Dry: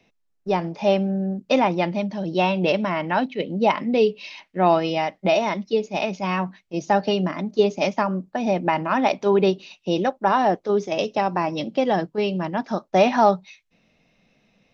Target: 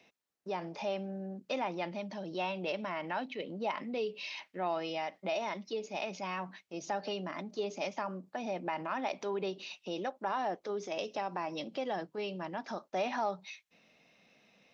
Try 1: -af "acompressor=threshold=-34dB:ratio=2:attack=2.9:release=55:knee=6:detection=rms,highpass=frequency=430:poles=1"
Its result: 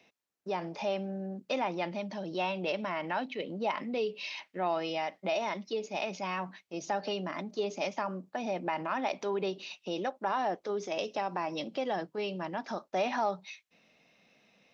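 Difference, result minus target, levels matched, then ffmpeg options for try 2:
downward compressor: peak gain reduction −3 dB
-af "acompressor=threshold=-40dB:ratio=2:attack=2.9:release=55:knee=6:detection=rms,highpass=frequency=430:poles=1"

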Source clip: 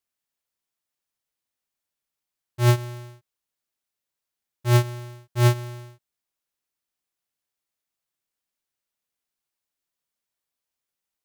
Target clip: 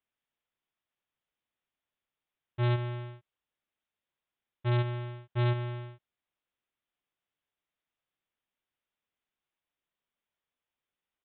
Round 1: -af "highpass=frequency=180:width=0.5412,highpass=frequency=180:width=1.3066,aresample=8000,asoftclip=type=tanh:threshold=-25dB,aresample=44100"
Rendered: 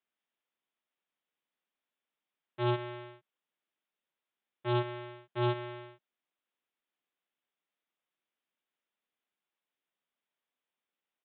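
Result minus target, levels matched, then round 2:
250 Hz band +4.5 dB
-af "aresample=8000,asoftclip=type=tanh:threshold=-25dB,aresample=44100"

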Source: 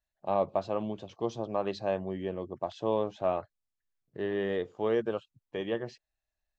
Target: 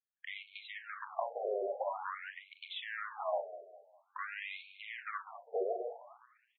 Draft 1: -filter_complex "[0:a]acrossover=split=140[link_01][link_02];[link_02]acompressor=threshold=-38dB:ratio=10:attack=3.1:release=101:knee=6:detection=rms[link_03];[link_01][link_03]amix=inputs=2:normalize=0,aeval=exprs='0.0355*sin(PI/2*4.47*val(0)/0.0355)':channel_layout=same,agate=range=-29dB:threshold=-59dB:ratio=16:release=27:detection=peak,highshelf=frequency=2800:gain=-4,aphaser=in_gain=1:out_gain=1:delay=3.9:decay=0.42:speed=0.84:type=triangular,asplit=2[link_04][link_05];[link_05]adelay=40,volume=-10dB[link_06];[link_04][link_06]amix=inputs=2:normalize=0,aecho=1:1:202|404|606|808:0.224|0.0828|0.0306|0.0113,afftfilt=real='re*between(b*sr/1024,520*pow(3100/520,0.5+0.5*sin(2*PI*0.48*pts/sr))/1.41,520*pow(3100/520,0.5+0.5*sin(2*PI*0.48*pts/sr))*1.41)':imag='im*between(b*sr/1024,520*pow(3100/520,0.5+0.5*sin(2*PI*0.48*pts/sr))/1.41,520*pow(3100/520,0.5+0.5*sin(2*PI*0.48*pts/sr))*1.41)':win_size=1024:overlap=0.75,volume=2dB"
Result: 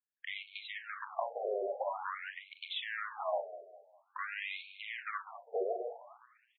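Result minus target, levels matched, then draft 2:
4,000 Hz band +3.0 dB
-filter_complex "[0:a]acrossover=split=140[link_01][link_02];[link_02]acompressor=threshold=-38dB:ratio=10:attack=3.1:release=101:knee=6:detection=rms[link_03];[link_01][link_03]amix=inputs=2:normalize=0,aeval=exprs='0.0355*sin(PI/2*4.47*val(0)/0.0355)':channel_layout=same,agate=range=-29dB:threshold=-59dB:ratio=16:release=27:detection=peak,highshelf=frequency=2800:gain=-11,aphaser=in_gain=1:out_gain=1:delay=3.9:decay=0.42:speed=0.84:type=triangular,asplit=2[link_04][link_05];[link_05]adelay=40,volume=-10dB[link_06];[link_04][link_06]amix=inputs=2:normalize=0,aecho=1:1:202|404|606|808:0.224|0.0828|0.0306|0.0113,afftfilt=real='re*between(b*sr/1024,520*pow(3100/520,0.5+0.5*sin(2*PI*0.48*pts/sr))/1.41,520*pow(3100/520,0.5+0.5*sin(2*PI*0.48*pts/sr))*1.41)':imag='im*between(b*sr/1024,520*pow(3100/520,0.5+0.5*sin(2*PI*0.48*pts/sr))/1.41,520*pow(3100/520,0.5+0.5*sin(2*PI*0.48*pts/sr))*1.41)':win_size=1024:overlap=0.75,volume=2dB"

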